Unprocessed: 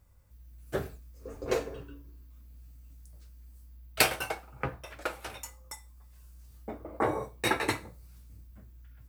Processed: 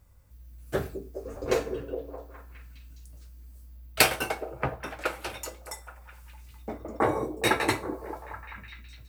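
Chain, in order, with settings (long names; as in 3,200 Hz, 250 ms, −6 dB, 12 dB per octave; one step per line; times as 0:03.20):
echo through a band-pass that steps 207 ms, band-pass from 290 Hz, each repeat 0.7 octaves, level −5 dB
level +3.5 dB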